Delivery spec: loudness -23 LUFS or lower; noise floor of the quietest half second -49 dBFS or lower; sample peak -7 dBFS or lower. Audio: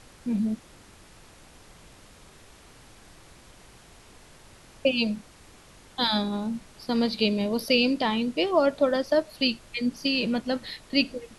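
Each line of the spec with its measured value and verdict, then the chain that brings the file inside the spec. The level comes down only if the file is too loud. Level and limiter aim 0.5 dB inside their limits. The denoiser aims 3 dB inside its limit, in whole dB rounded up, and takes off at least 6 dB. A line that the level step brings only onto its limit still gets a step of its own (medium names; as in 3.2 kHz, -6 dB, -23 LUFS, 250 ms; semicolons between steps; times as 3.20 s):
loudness -26.0 LUFS: pass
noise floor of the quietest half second -52 dBFS: pass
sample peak -8.0 dBFS: pass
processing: none needed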